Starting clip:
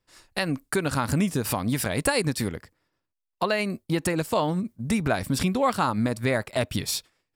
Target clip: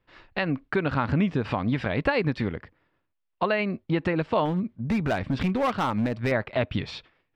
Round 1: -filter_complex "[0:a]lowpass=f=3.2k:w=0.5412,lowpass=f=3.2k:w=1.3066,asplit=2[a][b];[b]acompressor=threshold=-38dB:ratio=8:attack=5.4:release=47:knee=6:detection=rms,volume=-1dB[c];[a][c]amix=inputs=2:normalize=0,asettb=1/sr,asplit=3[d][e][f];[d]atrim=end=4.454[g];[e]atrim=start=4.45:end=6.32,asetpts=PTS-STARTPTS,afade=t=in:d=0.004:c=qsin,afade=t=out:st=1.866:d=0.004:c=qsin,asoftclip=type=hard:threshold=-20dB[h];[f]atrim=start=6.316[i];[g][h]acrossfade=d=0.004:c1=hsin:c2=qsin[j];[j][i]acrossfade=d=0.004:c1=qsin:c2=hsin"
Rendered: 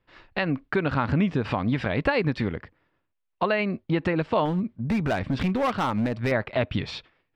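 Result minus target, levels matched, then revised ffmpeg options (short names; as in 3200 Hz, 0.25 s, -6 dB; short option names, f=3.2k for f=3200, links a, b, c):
compressor: peak gain reduction -8.5 dB
-filter_complex "[0:a]lowpass=f=3.2k:w=0.5412,lowpass=f=3.2k:w=1.3066,asplit=2[a][b];[b]acompressor=threshold=-48dB:ratio=8:attack=5.4:release=47:knee=6:detection=rms,volume=-1dB[c];[a][c]amix=inputs=2:normalize=0,asettb=1/sr,asplit=3[d][e][f];[d]atrim=end=4.454[g];[e]atrim=start=4.45:end=6.32,asetpts=PTS-STARTPTS,afade=t=in:d=0.004:c=qsin,afade=t=out:st=1.866:d=0.004:c=qsin,asoftclip=type=hard:threshold=-20dB[h];[f]atrim=start=6.316[i];[g][h]acrossfade=d=0.004:c1=hsin:c2=qsin[j];[j][i]acrossfade=d=0.004:c1=qsin:c2=hsin"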